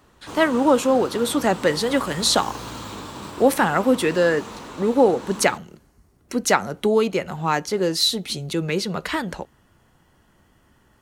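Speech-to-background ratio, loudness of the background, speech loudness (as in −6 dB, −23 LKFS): 14.5 dB, −35.5 LKFS, −21.0 LKFS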